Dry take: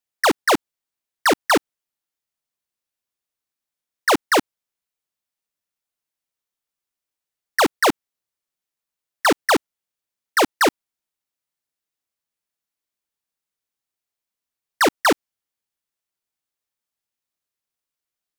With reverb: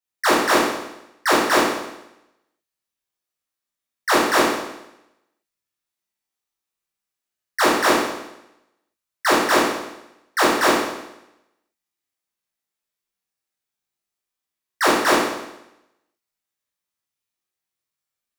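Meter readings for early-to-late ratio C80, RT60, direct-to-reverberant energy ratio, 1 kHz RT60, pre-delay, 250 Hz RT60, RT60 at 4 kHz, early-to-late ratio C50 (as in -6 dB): 4.0 dB, 0.90 s, -8.0 dB, 0.90 s, 11 ms, 0.90 s, 0.85 s, 0.5 dB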